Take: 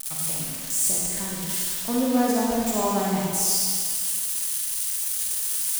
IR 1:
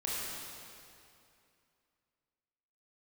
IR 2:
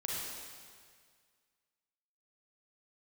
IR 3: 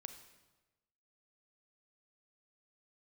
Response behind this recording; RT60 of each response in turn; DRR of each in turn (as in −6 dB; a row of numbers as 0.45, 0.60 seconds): 2; 2.6, 1.9, 1.1 seconds; −7.0, −4.5, 7.5 decibels